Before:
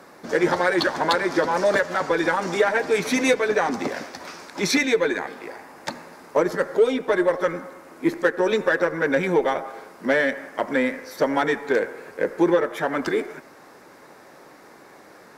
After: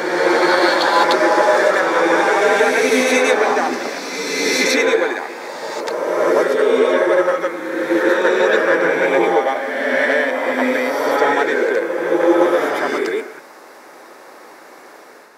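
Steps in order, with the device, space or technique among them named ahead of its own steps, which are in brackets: ghost voice (reverse; reverberation RT60 2.2 s, pre-delay 80 ms, DRR -4 dB; reverse; high-pass 350 Hz 12 dB/octave); trim +2.5 dB

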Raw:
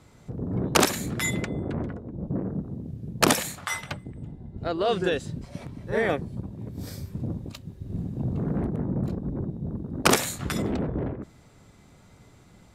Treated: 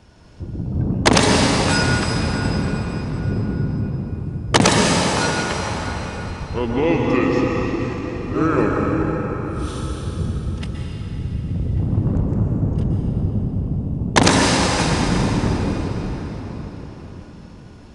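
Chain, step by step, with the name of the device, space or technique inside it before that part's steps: slowed and reverbed (tape speed -29%; reverberation RT60 5.0 s, pre-delay 114 ms, DRR -1.5 dB); trim +5 dB

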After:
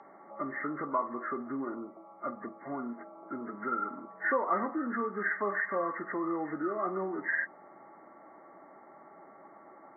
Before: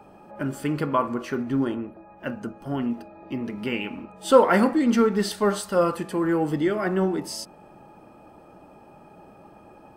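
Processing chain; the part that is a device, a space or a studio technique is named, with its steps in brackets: hearing aid with frequency lowering (knee-point frequency compression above 1.1 kHz 4:1; compression 2:1, threshold -28 dBFS, peak gain reduction 10.5 dB; cabinet simulation 400–6300 Hz, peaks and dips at 480 Hz -8 dB, 850 Hz -4 dB, 3.2 kHz +6 dB)

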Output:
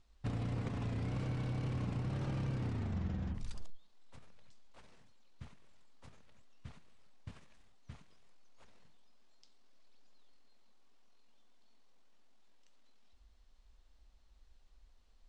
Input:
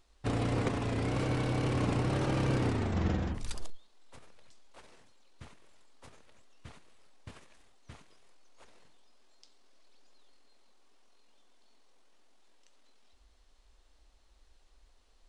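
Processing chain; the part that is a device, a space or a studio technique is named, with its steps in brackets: jukebox (low-pass 7.9 kHz 12 dB/octave; resonant low shelf 250 Hz +6 dB, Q 1.5; compression 4:1, threshold -29 dBFS, peak gain reduction 9 dB); trim -6 dB

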